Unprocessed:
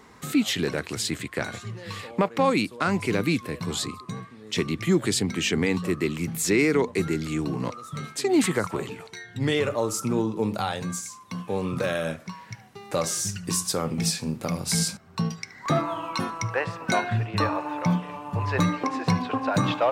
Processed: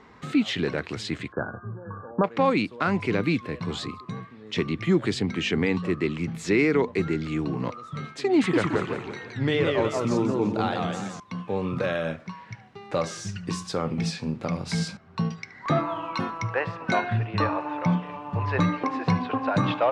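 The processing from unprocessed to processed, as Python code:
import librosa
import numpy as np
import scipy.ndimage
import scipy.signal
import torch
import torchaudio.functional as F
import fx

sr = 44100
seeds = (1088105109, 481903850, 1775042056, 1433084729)

y = fx.brickwall_lowpass(x, sr, high_hz=1700.0, at=(1.32, 2.24))
y = fx.echo_warbled(y, sr, ms=172, feedback_pct=40, rate_hz=2.8, cents=194, wet_db=-3.0, at=(8.36, 11.2))
y = scipy.signal.sosfilt(scipy.signal.butter(2, 3600.0, 'lowpass', fs=sr, output='sos'), y)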